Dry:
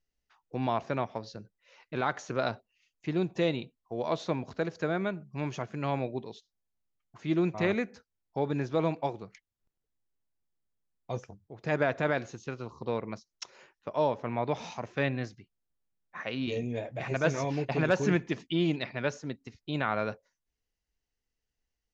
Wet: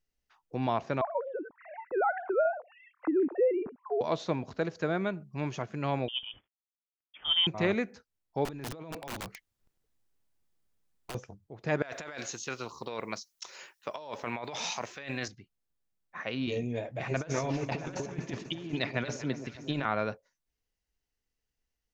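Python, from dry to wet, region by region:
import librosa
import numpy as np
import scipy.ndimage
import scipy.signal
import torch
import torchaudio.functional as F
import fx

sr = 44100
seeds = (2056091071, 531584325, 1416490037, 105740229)

y = fx.chain(x, sr, fx.sine_speech(),
    fx.lowpass(hz=1400.0, slope=24),
    fx.env_flatten(amount_pct=50), at=(1.01, 4.01))
y = fx.chain(y, sr, fx.cvsd(bps=64000),
    fx.freq_invert(carrier_hz=3400), at=(6.08, 7.47))
y = fx.chain(y, sr, fx.over_compress(threshold_db=-39.0, ratio=-1.0),
    fx.overflow_wrap(gain_db=32.0), at=(8.45, 11.15))
y = fx.chain(y, sr, fx.tilt_eq(slope=3.5),
    fx.over_compress(threshold_db=-38.0, ratio=-1.0), at=(11.82, 15.28))
y = fx.chain(y, sr, fx.highpass(hz=79.0, slope=6),
    fx.over_compress(threshold_db=-33.0, ratio=-0.5),
    fx.echo_alternate(ms=122, hz=1100.0, feedback_pct=79, wet_db=-11.0), at=(17.17, 19.85))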